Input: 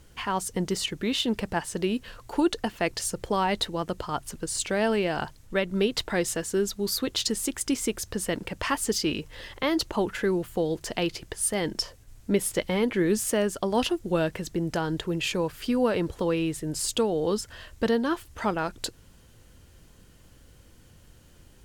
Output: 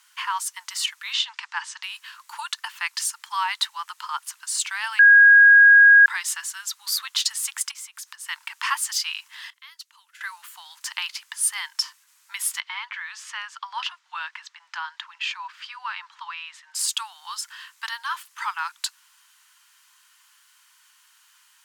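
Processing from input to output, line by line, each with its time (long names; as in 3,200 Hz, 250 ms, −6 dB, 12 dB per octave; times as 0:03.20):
0:01.13–0:01.83: low-pass filter 6,900 Hz 24 dB per octave
0:04.99–0:06.06: beep over 1,640 Hz −12.5 dBFS
0:07.71–0:08.28: downward compressor 8 to 1, threshold −37 dBFS
0:09.50–0:10.21: guitar amp tone stack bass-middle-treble 6-0-2
0:12.60–0:16.75: high-frequency loss of the air 160 metres
whole clip: Butterworth high-pass 930 Hz 72 dB per octave; level +4.5 dB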